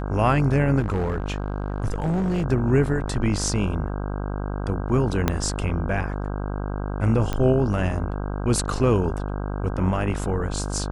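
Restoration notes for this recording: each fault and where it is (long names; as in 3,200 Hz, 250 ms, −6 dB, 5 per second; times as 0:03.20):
mains buzz 50 Hz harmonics 32 −28 dBFS
0:00.79–0:02.44: clipping −20 dBFS
0:05.28: click −6 dBFS
0:07.33: click −13 dBFS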